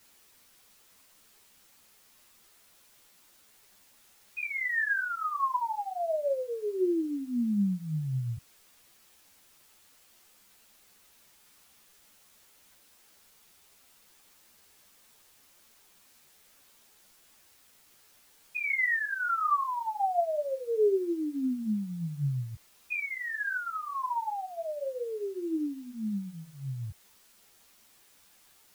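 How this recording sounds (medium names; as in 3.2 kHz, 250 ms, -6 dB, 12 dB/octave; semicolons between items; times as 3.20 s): tremolo triangle 1.5 Hz, depth 60%; a quantiser's noise floor 10-bit, dither triangular; a shimmering, thickened sound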